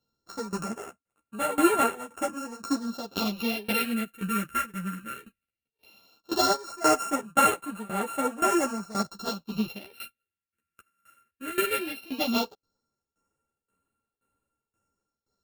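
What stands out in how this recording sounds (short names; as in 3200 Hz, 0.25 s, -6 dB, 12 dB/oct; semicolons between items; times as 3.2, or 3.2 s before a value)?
a buzz of ramps at a fixed pitch in blocks of 32 samples; phasing stages 4, 0.16 Hz, lowest notch 750–5000 Hz; tremolo saw down 1.9 Hz, depth 90%; a shimmering, thickened sound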